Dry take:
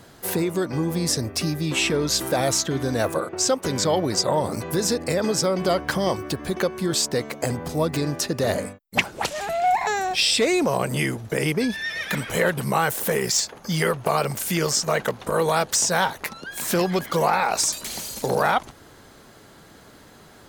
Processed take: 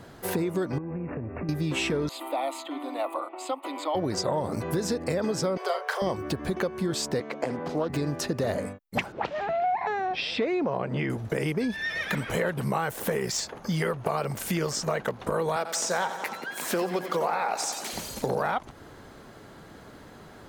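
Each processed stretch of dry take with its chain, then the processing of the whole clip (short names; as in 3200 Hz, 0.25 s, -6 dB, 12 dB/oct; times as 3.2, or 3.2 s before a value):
0.78–1.49 median filter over 15 samples + brick-wall FIR low-pass 2800 Hz + compressor 12:1, threshold -31 dBFS
2.09–3.95 Chebyshev high-pass 280 Hz, order 6 + high shelf 5100 Hz -5.5 dB + fixed phaser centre 1600 Hz, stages 6
5.57–6.02 steep high-pass 400 Hz 96 dB/oct + notch 560 Hz, Q 14 + doubler 34 ms -7.5 dB
7.2–7.9 three-band isolator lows -19 dB, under 180 Hz, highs -13 dB, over 5700 Hz + Doppler distortion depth 0.15 ms
9.12–11.1 HPF 120 Hz 6 dB/oct + air absorption 250 m
15.56–17.93 HPF 270 Hz + feedback echo 89 ms, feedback 59%, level -12 dB
whole clip: high shelf 3100 Hz -9.5 dB; compressor 3:1, threshold -28 dBFS; gain +2 dB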